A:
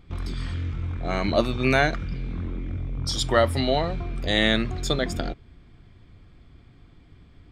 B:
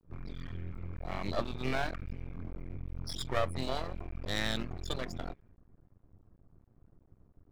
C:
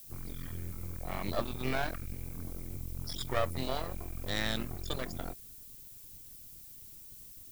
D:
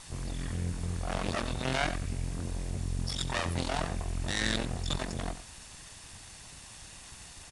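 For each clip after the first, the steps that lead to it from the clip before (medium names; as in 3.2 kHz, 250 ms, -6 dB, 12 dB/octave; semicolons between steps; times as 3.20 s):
level-controlled noise filter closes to 830 Hz, open at -20.5 dBFS; loudest bins only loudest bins 64; half-wave rectifier; trim -7.5 dB
added noise violet -51 dBFS
comb filter that takes the minimum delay 1.1 ms; delay 92 ms -13.5 dB; resampled via 22.05 kHz; trim +8.5 dB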